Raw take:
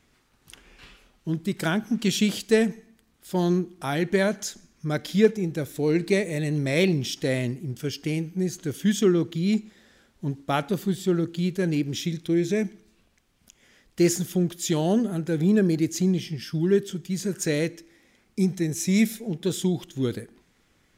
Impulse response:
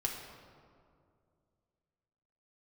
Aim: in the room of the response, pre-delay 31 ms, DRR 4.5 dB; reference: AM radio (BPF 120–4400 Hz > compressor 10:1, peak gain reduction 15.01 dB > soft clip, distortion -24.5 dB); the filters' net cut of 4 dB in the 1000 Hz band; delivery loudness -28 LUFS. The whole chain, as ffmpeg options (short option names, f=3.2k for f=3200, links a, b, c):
-filter_complex "[0:a]equalizer=f=1k:t=o:g=-6,asplit=2[a][b];[1:a]atrim=start_sample=2205,adelay=31[c];[b][c]afir=irnorm=-1:irlink=0,volume=-7.5dB[d];[a][d]amix=inputs=2:normalize=0,highpass=120,lowpass=4.4k,acompressor=threshold=-27dB:ratio=10,asoftclip=threshold=-20dB,volume=5.5dB"